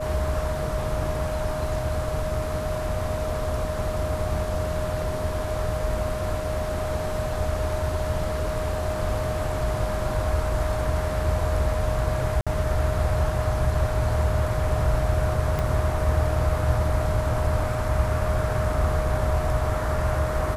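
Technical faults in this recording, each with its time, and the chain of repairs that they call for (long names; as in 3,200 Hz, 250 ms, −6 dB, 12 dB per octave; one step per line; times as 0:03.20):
whistle 620 Hz −29 dBFS
0:12.41–0:12.47: drop-out 56 ms
0:15.59: click −14 dBFS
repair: click removal
notch filter 620 Hz, Q 30
repair the gap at 0:12.41, 56 ms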